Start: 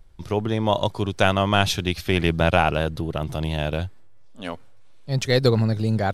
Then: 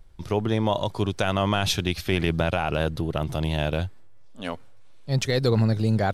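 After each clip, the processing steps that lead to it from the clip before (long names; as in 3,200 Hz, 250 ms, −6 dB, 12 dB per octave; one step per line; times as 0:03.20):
brickwall limiter −11.5 dBFS, peak gain reduction 8.5 dB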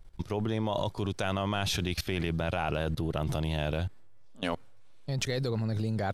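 output level in coarse steps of 17 dB
level +4 dB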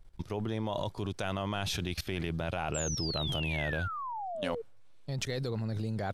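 sound drawn into the spectrogram fall, 0:02.74–0:04.62, 440–7,800 Hz −34 dBFS
level −3.5 dB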